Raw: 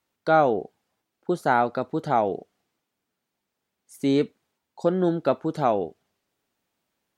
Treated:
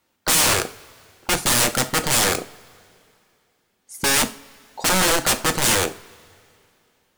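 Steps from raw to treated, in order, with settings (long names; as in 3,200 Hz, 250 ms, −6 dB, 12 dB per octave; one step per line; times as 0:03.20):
wrap-around overflow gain 24 dB
coupled-rooms reverb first 0.32 s, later 2.6 s, from −21 dB, DRR 8 dB
dynamic equaliser 8,600 Hz, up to +7 dB, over −45 dBFS, Q 1
level +9 dB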